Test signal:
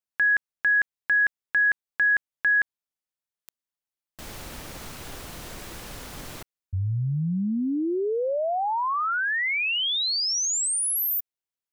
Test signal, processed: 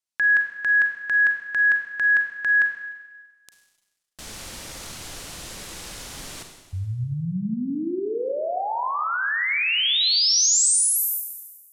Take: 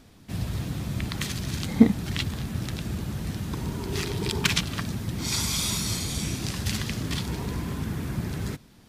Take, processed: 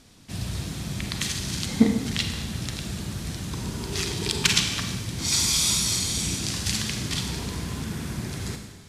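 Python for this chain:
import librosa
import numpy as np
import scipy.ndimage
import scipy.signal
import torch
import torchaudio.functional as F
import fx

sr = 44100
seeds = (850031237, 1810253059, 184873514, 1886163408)

y = scipy.signal.sosfilt(scipy.signal.butter(2, 9500.0, 'lowpass', fs=sr, output='sos'), x)
y = fx.high_shelf(y, sr, hz=3200.0, db=11.0)
y = fx.rev_schroeder(y, sr, rt60_s=1.3, comb_ms=33, drr_db=4.5)
y = y * 10.0 ** (-2.5 / 20.0)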